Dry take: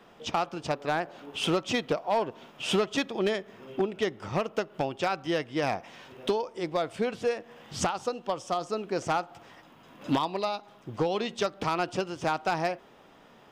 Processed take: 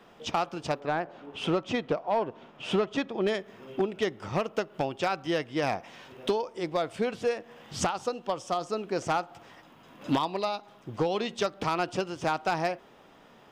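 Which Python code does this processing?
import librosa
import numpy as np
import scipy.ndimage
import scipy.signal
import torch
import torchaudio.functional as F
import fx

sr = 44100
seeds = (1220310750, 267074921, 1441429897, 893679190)

y = fx.lowpass(x, sr, hz=2000.0, slope=6, at=(0.79, 3.27), fade=0.02)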